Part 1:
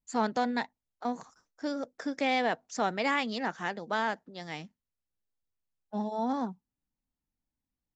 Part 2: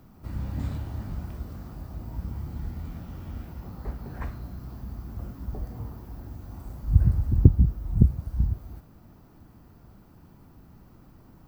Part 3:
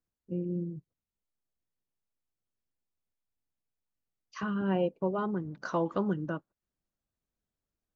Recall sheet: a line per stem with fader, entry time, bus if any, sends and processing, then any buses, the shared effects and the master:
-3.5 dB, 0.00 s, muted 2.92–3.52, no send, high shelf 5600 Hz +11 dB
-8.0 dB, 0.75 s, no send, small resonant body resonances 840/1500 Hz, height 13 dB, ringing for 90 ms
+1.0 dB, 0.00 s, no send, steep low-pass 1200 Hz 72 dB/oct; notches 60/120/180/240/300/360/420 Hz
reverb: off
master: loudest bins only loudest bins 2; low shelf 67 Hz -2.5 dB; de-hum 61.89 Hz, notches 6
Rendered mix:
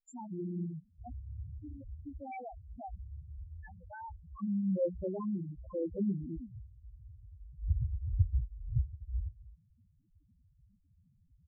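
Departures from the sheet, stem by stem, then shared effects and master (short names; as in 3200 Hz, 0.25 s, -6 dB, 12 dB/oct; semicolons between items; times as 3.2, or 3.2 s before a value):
stem 1 -3.5 dB -> -10.0 dB; master: missing de-hum 61.89 Hz, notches 6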